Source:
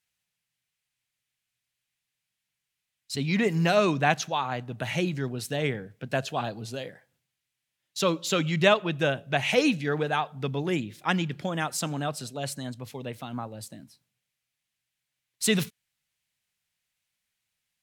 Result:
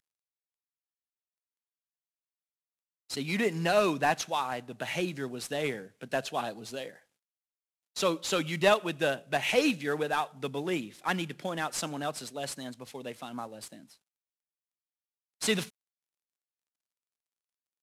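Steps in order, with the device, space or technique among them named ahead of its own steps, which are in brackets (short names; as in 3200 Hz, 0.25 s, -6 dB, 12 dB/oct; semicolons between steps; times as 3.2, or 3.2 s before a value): early wireless headset (HPF 230 Hz 12 dB/oct; CVSD 64 kbps); gain -2 dB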